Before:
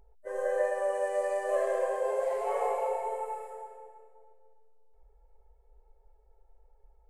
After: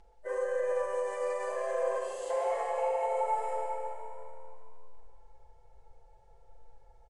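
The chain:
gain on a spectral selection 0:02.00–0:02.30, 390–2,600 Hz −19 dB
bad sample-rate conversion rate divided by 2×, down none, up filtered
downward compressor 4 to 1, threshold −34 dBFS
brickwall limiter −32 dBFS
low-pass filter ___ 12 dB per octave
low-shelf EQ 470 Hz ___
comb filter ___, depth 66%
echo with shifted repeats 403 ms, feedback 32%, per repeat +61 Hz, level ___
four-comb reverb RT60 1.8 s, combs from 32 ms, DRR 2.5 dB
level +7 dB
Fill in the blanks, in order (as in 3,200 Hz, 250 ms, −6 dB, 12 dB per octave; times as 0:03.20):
7,600 Hz, −10 dB, 5.9 ms, −17 dB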